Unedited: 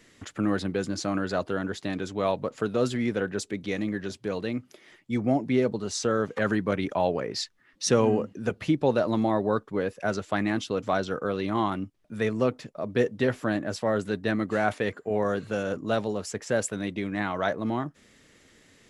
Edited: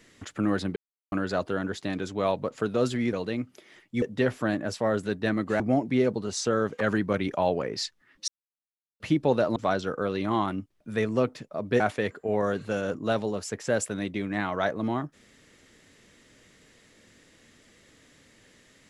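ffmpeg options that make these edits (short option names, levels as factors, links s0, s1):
-filter_complex "[0:a]asplit=10[s0][s1][s2][s3][s4][s5][s6][s7][s8][s9];[s0]atrim=end=0.76,asetpts=PTS-STARTPTS,afade=t=out:st=0.756:d=0.004:c=hsin[s10];[s1]atrim=start=0.76:end=1.12,asetpts=PTS-STARTPTS,volume=0[s11];[s2]atrim=start=1.12:end=3.132,asetpts=PTS-STARTPTS,afade=t=in:d=0.004:c=hsin[s12];[s3]atrim=start=4.288:end=5.182[s13];[s4]atrim=start=13.038:end=14.622[s14];[s5]atrim=start=5.178:end=7.86,asetpts=PTS-STARTPTS,afade=t=out:st=2.678:d=0.004:c=hsin[s15];[s6]atrim=start=7.86:end=8.58,asetpts=PTS-STARTPTS,volume=0[s16];[s7]atrim=start=8.58:end=9.142,asetpts=PTS-STARTPTS,afade=t=in:d=0.004:c=hsin[s17];[s8]atrim=start=10.798:end=13.042[s18];[s9]atrim=start=14.618[s19];[s10][s11][s12]concat=n=3:v=0:a=1[s20];[s20][s13]acrossfade=d=0.004:c1=hsin:c2=hsin[s21];[s21][s14]acrossfade=d=0.004:c1=hsin:c2=hsin[s22];[s15][s16][s17]concat=n=3:v=0:a=1[s23];[s22][s23]acrossfade=d=0.004:c1=hsin:c2=hsin[s24];[s24][s18]acrossfade=d=0.004:c1=hsin:c2=hsin[s25];[s25][s19]acrossfade=d=0.004:c1=hsin:c2=hsin"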